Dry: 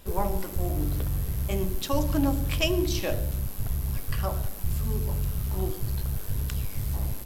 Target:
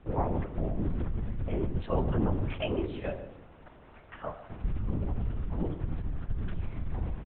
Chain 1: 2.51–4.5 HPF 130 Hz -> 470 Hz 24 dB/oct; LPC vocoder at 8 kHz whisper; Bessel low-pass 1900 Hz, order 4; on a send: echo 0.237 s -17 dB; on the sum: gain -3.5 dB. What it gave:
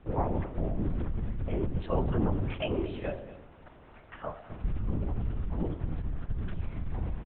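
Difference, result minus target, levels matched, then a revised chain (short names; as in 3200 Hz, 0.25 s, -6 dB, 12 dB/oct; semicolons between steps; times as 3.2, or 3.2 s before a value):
echo 88 ms late
2.51–4.5 HPF 130 Hz -> 470 Hz 24 dB/oct; LPC vocoder at 8 kHz whisper; Bessel low-pass 1900 Hz, order 4; on a send: echo 0.149 s -17 dB; on the sum: gain -3.5 dB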